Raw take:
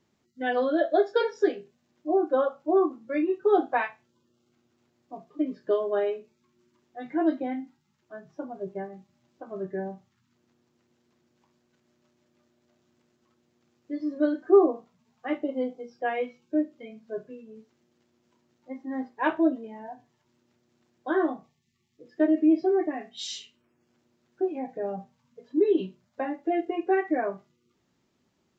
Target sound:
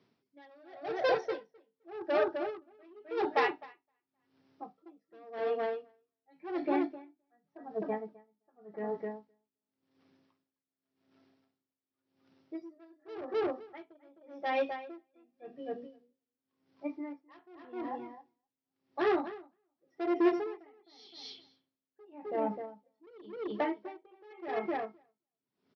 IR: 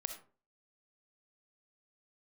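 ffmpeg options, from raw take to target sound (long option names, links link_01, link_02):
-filter_complex "[0:a]asplit=2[link_01][link_02];[link_02]aeval=exprs='0.0562*(abs(mod(val(0)/0.0562+3,4)-2)-1)':channel_layout=same,volume=-3.5dB[link_03];[link_01][link_03]amix=inputs=2:normalize=0,aeval=exprs='0.355*(cos(1*acos(clip(val(0)/0.355,-1,1)))-cos(1*PI/2))+0.0355*(cos(4*acos(clip(val(0)/0.355,-1,1)))-cos(4*PI/2))+0.0501*(cos(5*acos(clip(val(0)/0.355,-1,1)))-cos(5*PI/2))':channel_layout=same,aresample=11025,aresample=44100,asetrate=48951,aresample=44100,highpass=frequency=100:width=0.5412,highpass=frequency=100:width=1.3066,asplit=2[link_04][link_05];[link_05]adelay=259,lowpass=frequency=4300:poles=1,volume=-5dB,asplit=2[link_06][link_07];[link_07]adelay=259,lowpass=frequency=4300:poles=1,volume=0.16,asplit=2[link_08][link_09];[link_09]adelay=259,lowpass=frequency=4300:poles=1,volume=0.16[link_10];[link_04][link_06][link_08][link_10]amix=inputs=4:normalize=0,aeval=exprs='val(0)*pow(10,-31*(0.5-0.5*cos(2*PI*0.89*n/s))/20)':channel_layout=same,volume=-8dB"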